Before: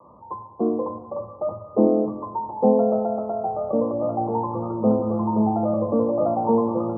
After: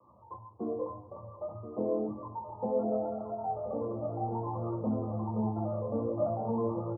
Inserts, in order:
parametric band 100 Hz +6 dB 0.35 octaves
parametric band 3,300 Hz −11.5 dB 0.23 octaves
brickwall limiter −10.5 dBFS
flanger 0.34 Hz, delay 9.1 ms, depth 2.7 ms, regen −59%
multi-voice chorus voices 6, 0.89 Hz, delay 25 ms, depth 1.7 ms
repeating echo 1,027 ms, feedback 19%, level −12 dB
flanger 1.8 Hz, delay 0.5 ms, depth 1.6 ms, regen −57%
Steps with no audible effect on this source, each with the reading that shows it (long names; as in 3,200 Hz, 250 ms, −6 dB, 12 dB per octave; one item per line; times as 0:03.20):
parametric band 3,300 Hz: nothing at its input above 1,200 Hz